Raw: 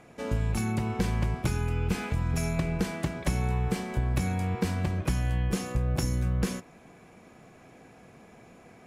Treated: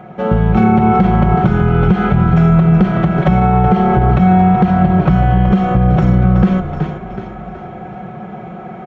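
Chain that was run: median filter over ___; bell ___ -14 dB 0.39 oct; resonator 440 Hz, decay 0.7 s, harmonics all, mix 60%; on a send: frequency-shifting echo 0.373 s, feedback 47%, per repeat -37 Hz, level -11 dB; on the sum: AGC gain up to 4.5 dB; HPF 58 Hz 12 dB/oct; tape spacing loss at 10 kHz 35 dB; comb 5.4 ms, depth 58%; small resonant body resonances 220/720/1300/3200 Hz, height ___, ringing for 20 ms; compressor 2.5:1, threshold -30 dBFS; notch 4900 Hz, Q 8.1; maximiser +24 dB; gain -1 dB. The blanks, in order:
5 samples, 260 Hz, 9 dB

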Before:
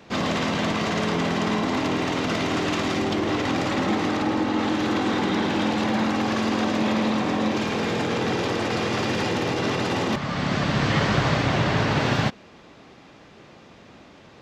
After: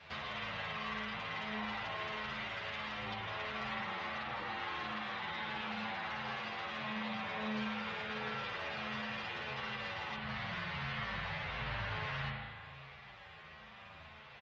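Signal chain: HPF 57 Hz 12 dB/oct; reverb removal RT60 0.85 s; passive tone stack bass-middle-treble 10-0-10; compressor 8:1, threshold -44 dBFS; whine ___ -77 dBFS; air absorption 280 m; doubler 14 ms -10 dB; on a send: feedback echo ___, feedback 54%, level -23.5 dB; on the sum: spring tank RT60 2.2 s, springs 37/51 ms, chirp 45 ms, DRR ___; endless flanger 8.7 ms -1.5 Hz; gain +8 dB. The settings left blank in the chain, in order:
7300 Hz, 0.562 s, -2 dB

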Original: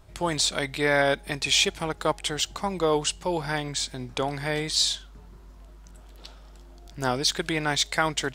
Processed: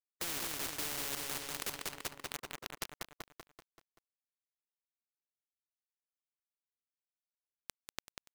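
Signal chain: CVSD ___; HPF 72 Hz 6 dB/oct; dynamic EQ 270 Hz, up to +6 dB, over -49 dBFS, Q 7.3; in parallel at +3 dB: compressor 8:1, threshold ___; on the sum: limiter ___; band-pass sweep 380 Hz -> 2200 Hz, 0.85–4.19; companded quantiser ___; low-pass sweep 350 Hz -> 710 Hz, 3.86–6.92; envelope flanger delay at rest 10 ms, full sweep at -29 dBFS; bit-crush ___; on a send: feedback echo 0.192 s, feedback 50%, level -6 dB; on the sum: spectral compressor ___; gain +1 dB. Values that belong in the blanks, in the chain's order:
32 kbps, -38 dBFS, -19 dBFS, 8-bit, 6-bit, 4:1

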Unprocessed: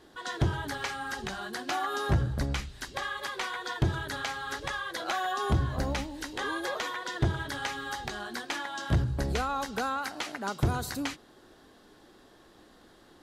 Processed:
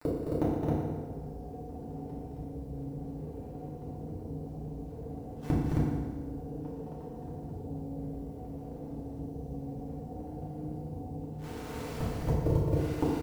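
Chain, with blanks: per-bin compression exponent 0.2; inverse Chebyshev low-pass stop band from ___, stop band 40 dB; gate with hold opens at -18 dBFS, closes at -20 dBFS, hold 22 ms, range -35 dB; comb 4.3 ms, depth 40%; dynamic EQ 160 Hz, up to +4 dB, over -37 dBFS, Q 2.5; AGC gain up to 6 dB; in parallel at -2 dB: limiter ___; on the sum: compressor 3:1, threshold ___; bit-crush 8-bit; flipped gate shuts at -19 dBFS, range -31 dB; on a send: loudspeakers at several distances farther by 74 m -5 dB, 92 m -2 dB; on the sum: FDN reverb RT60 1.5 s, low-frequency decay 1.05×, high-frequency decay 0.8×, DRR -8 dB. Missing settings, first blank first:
1300 Hz, -15 dBFS, -21 dBFS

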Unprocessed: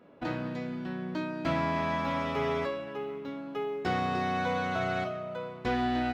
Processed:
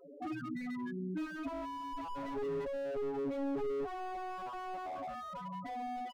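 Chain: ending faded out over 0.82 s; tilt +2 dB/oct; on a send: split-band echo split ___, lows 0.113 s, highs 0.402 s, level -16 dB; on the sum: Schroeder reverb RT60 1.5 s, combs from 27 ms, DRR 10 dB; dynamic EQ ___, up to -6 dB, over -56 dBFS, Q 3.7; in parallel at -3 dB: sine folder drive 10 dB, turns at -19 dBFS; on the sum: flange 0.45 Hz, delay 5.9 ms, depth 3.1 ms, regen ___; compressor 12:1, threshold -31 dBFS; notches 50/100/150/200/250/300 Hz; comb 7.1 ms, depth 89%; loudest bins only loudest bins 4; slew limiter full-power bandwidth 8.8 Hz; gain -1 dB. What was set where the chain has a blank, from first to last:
310 Hz, 150 Hz, -68%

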